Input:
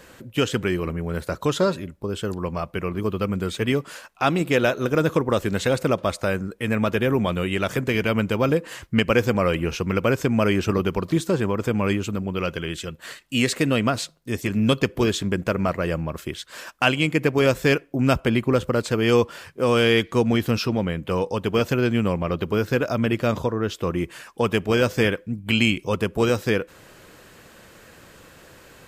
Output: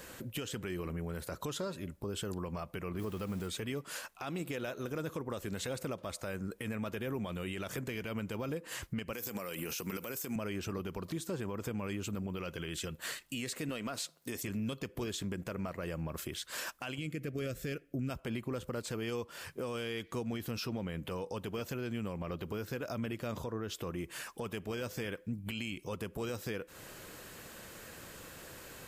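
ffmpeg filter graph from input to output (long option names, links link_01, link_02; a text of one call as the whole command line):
ffmpeg -i in.wav -filter_complex "[0:a]asettb=1/sr,asplit=3[link_01][link_02][link_03];[link_01]atrim=end=2.994[link_04];[link_02]atrim=start=2.99:end=3.48,asetpts=PTS-STARTPTS,afade=type=in:duration=0.004:curve=qsin,afade=type=out:start_time=0.486:duration=0.004:curve=qsin,aeval=exprs='val(0)+0.5*0.0168*sgn(val(0))':channel_layout=same,acrusher=bits=7:mix=0:aa=0.5[link_05];[link_03]atrim=start=3.476[link_06];[link_04][link_05]acrossfade=duration=0.004:curve1=hsin:curve2=qsin[link_07];[link_07][link_06]acrossfade=duration=0.004:curve1=qsin:curve2=hsin,asettb=1/sr,asplit=3[link_08][link_09][link_10];[link_08]atrim=end=9.134[link_11];[link_09]atrim=start=9.13:end=10.36,asetpts=PTS-STARTPTS,afade=type=in:duration=0.004:curve=qsin,afade=type=out:start_time=1.226:duration=0.004:curve=qsin,highpass=170,aemphasis=mode=production:type=75fm,acompressor=threshold=-23dB:ratio=6:attack=3.2:release=140:knee=1:detection=peak[link_12];[link_10]atrim=start=10.356[link_13];[link_11][link_12]acrossfade=duration=0.004:curve1=hsin:curve2=qsin[link_14];[link_14][link_13]acrossfade=duration=0.004:curve1=qsin:curve2=hsin,asettb=1/sr,asplit=3[link_15][link_16][link_17];[link_15]atrim=end=13.694[link_18];[link_16]atrim=start=13.69:end=14.43,asetpts=PTS-STARTPTS,afade=type=in:duration=0.004:curve=qsin,afade=type=out:start_time=0.736:duration=0.004:curve=qsin,highpass=frequency=310:poles=1,acontrast=75[link_19];[link_17]atrim=start=14.426[link_20];[link_18][link_19]acrossfade=duration=0.004:curve1=hsin:curve2=qsin[link_21];[link_21][link_20]acrossfade=duration=0.004:curve1=qsin:curve2=hsin,asettb=1/sr,asplit=3[link_22][link_23][link_24];[link_22]atrim=end=16.984[link_25];[link_23]atrim=start=16.98:end=18.1,asetpts=PTS-STARTPTS,afade=type=in:duration=0.004:curve=qsin,afade=type=out:start_time=1.116:duration=0.004:curve=qsin,asuperstop=centerf=900:order=4:qfactor=1.7,lowshelf=frequency=230:gain=7.5[link_26];[link_24]atrim=start=18.096[link_27];[link_25][link_26]acrossfade=duration=0.004:curve1=hsin:curve2=qsin[link_28];[link_28][link_27]acrossfade=duration=0.004:curve1=qsin:curve2=hsin,highshelf=frequency=7200:gain=9,acompressor=threshold=-29dB:ratio=12,alimiter=level_in=2dB:limit=-24dB:level=0:latency=1:release=20,volume=-2dB,volume=-3dB" out.wav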